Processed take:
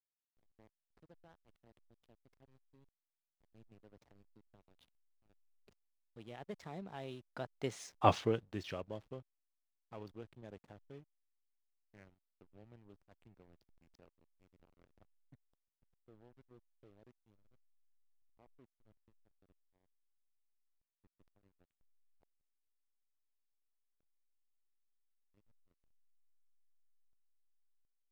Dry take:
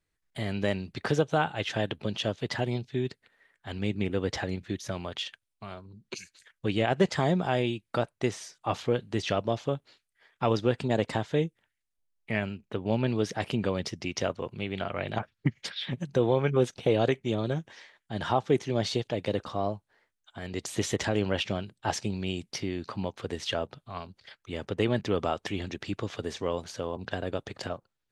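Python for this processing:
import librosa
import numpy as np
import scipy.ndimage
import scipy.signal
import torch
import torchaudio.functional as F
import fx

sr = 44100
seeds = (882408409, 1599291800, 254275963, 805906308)

y = fx.doppler_pass(x, sr, speed_mps=25, closest_m=2.2, pass_at_s=8.04)
y = fx.backlash(y, sr, play_db=-56.5)
y = F.gain(torch.from_numpy(y), 3.0).numpy()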